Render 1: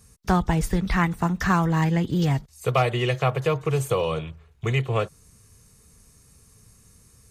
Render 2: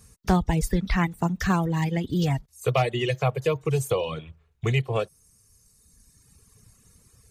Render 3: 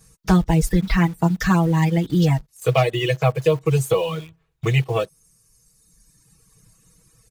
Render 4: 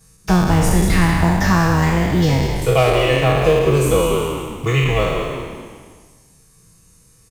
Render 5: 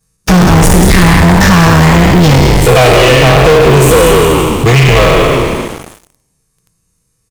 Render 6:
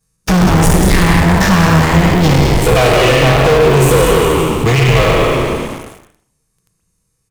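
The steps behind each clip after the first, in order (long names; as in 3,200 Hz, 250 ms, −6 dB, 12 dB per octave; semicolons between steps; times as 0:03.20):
reverb reduction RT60 1.7 s; dynamic equaliser 1,300 Hz, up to −7 dB, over −38 dBFS, Q 1.4; level +1 dB
comb filter 6.2 ms, depth 95%; in parallel at −8 dB: bit-depth reduction 6 bits, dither none; on the sum: level −1.5 dB
peak hold with a decay on every bin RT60 1.49 s; on a send: echo with shifted repeats 190 ms, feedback 43%, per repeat −88 Hz, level −7 dB
leveller curve on the samples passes 5
convolution reverb, pre-delay 122 ms, DRR 7 dB; level −5 dB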